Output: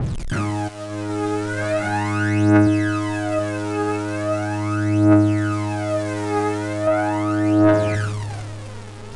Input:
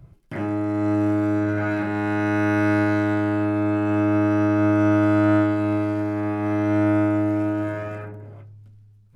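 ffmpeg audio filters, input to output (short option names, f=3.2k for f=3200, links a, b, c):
-filter_complex "[0:a]aeval=exprs='val(0)+0.5*0.02*sgn(val(0))':c=same,asplit=3[a][b][c];[a]afade=t=out:st=0.67:d=0.02[d];[b]agate=range=-14dB:threshold=-18dB:ratio=16:detection=peak,afade=t=in:st=0.67:d=0.02,afade=t=out:st=1.09:d=0.02[e];[c]afade=t=in:st=1.09:d=0.02[f];[d][e][f]amix=inputs=3:normalize=0,asettb=1/sr,asplit=3[g][h][i];[g]atrim=end=2.664[j];[h]atrim=start=2.66:end=3.39,asetpts=PTS-STARTPTS,afade=t=in:d=0.004:c=qsin,afade=t=out:st=0.726:d=0.004:c=qsin,aecho=1:1:6.6:0.87,atrim=end_sample=32193[k];[i]atrim=start=3.386[l];[j][k]acrossfade=d=0.004:c1=hsin:c2=qsin[m];[m][l]acrossfade=d=0.004:c1=qsin:c2=hsin,acontrast=71,alimiter=limit=-13.5dB:level=0:latency=1:release=157,aphaser=in_gain=1:out_gain=1:delay=2.5:decay=0.75:speed=0.39:type=triangular,asettb=1/sr,asplit=3[n][o][p];[n]atrim=end=6.874[q];[o]atrim=start=6.87:end=7.95,asetpts=PTS-STARTPTS,afade=t=in:d=0.004:c=qsin,afade=t=out:st=1.076:d=0.004:c=qsin,asplit=2[r][s];[s]highpass=f=720:p=1,volume=16dB,asoftclip=type=tanh:threshold=-2.5dB[t];[r][t]amix=inputs=2:normalize=0,lowpass=f=1.2k:p=1,volume=-6dB[u];[p]atrim=start=7.946[v];[q][u]acrossfade=d=0.004:c1=hsin:c2=qsin[w];[w][v]acrossfade=d=0.004:c1=qsin:c2=hsin,aeval=exprs='val(0)*gte(abs(val(0)),0.0266)':c=same,aresample=22050,aresample=44100,adynamicequalizer=threshold=0.0112:dfrequency=4700:dqfactor=0.7:tfrequency=4700:tqfactor=0.7:attack=5:release=100:ratio=0.375:range=2.5:mode=boostabove:tftype=highshelf,volume=-3dB"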